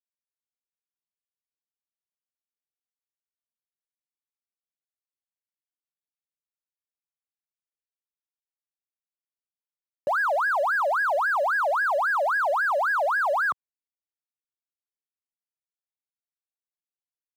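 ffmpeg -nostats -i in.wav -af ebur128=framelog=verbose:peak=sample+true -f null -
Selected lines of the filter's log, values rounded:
Integrated loudness:
  I:         -23.3 LUFS
  Threshold: -33.5 LUFS
Loudness range:
  LRA:         9.7 LU
  Threshold: -45.7 LUFS
  LRA low:   -32.7 LUFS
  LRA high:  -23.0 LUFS
Sample peak:
  Peak:      -19.1 dBFS
True peak:
  Peak:      -19.1 dBFS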